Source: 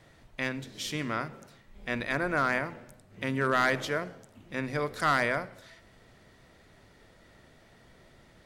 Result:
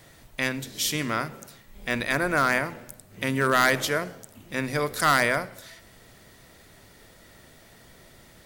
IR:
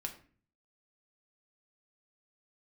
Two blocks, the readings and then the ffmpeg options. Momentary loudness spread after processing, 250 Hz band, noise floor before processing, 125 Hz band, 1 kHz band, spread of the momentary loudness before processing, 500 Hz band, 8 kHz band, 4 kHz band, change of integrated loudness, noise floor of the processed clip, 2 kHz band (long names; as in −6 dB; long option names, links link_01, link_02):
15 LU, +4.0 dB, −59 dBFS, +4.0 dB, +4.5 dB, 15 LU, +4.0 dB, +12.5 dB, +8.0 dB, +5.0 dB, −53 dBFS, +5.5 dB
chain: -af "aemphasis=mode=production:type=50fm,volume=4.5dB"